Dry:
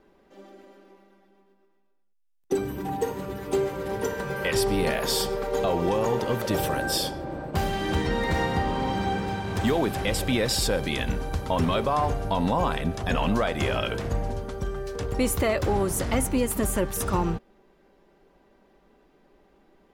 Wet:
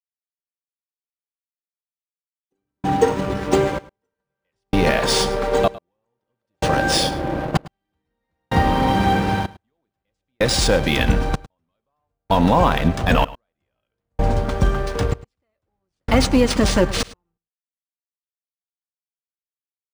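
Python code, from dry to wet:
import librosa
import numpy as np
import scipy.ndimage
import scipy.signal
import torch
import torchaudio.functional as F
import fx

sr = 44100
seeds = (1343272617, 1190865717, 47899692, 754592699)

p1 = fx.notch(x, sr, hz=400.0, q=12.0)
p2 = fx.rider(p1, sr, range_db=10, speed_s=0.5)
p3 = p1 + (p2 * librosa.db_to_amplitude(-1.0))
p4 = np.sign(p3) * np.maximum(np.abs(p3) - 10.0 ** (-36.0 / 20.0), 0.0)
p5 = fx.step_gate(p4, sr, bpm=111, pattern='.......xxxxxxx', floor_db=-60.0, edge_ms=4.5)
p6 = p5 + 10.0 ** (-19.5 / 20.0) * np.pad(p5, (int(106 * sr / 1000.0), 0))[:len(p5)]
p7 = np.interp(np.arange(len(p6)), np.arange(len(p6))[::3], p6[::3])
y = p7 * librosa.db_to_amplitude(5.0)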